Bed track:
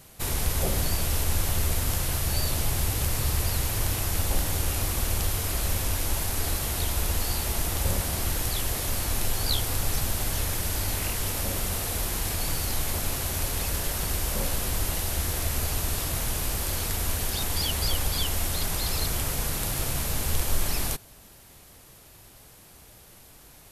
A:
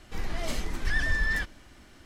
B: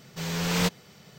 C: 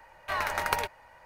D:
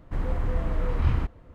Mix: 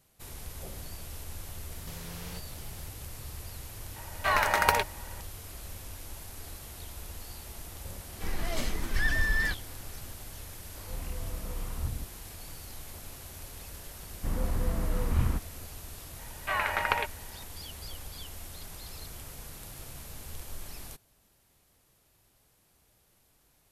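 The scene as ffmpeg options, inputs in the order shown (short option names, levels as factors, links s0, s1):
-filter_complex "[3:a]asplit=2[s0][s1];[4:a]asplit=2[s2][s3];[0:a]volume=0.158[s4];[2:a]acompressor=threshold=0.00891:ratio=6:attack=3.2:release=140:knee=1:detection=peak[s5];[s0]acontrast=46[s6];[s2]acrossover=split=380|1800[s7][s8][s9];[s8]adelay=100[s10];[s7]adelay=250[s11];[s11][s10][s9]amix=inputs=3:normalize=0[s12];[s3]equalizer=f=210:w=4:g=6.5[s13];[s1]lowpass=f=2800:t=q:w=1.6[s14];[s5]atrim=end=1.18,asetpts=PTS-STARTPTS,volume=0.794,afade=t=in:d=0.004:c=hsin,afade=t=out:st=1.176:d=0.004:c=hsin,adelay=1710[s15];[s6]atrim=end=1.25,asetpts=PTS-STARTPTS,volume=0.891,afade=t=in:d=0.004:c=hsin,afade=t=out:st=1.246:d=0.004:c=hsin,adelay=3960[s16];[1:a]atrim=end=2.05,asetpts=PTS-STARTPTS,volume=0.944,afade=t=in:d=0.004:c=hsin,afade=t=out:st=2.046:d=0.004:c=hsin,adelay=8090[s17];[s12]atrim=end=1.54,asetpts=PTS-STARTPTS,volume=0.282,afade=t=in:d=0.004:c=hsin,afade=t=out:st=1.536:d=0.004:c=hsin,adelay=10530[s18];[s13]atrim=end=1.54,asetpts=PTS-STARTPTS,volume=0.668,afade=t=in:d=0.004:c=hsin,afade=t=out:st=1.536:d=0.004:c=hsin,adelay=622692S[s19];[s14]atrim=end=1.25,asetpts=PTS-STARTPTS,volume=0.891,afade=t=in:d=0.004:c=hsin,afade=t=out:st=1.246:d=0.004:c=hsin,adelay=16190[s20];[s4][s15][s16][s17][s18][s19][s20]amix=inputs=7:normalize=0"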